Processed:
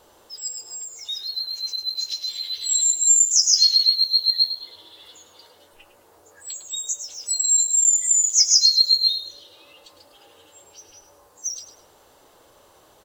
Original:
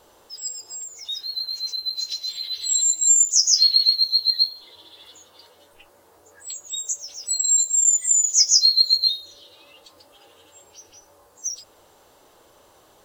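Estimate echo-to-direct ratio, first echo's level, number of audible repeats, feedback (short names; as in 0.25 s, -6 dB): -10.5 dB, -11.0 dB, 3, 30%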